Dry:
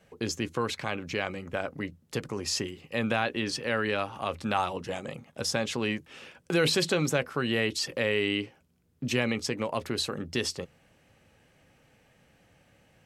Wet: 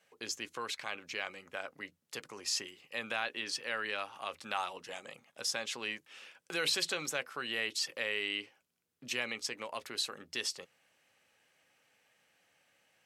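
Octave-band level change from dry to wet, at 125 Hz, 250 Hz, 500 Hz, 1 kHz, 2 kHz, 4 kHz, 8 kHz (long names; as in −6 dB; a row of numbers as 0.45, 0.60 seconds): −23.0, −17.5, −12.5, −8.0, −5.0, −3.5, −3.0 decibels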